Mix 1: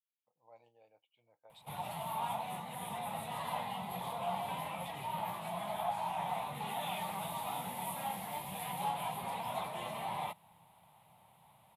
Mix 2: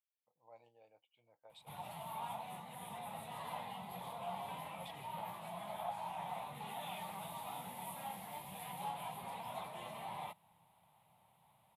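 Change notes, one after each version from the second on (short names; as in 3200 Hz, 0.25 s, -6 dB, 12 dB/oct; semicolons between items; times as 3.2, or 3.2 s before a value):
background -6.5 dB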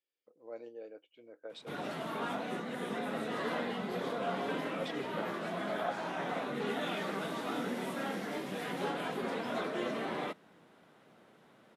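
master: remove EQ curve 110 Hz 0 dB, 180 Hz -9 dB, 260 Hz -25 dB, 430 Hz -25 dB, 890 Hz +2 dB, 1500 Hz -22 dB, 2300 Hz -8 dB, 3600 Hz -8 dB, 5800 Hz -17 dB, 11000 Hz +7 dB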